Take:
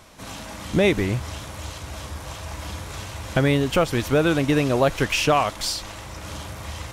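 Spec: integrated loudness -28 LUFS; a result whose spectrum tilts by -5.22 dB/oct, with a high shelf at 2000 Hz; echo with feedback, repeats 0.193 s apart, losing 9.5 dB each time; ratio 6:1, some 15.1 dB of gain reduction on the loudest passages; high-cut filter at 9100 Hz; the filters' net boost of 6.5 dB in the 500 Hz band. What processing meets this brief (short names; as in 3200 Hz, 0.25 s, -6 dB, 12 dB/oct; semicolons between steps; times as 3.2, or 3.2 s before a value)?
LPF 9100 Hz; bell 500 Hz +8.5 dB; high shelf 2000 Hz -7 dB; compressor 6:1, threshold -26 dBFS; feedback echo 0.193 s, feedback 33%, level -9.5 dB; gain +3 dB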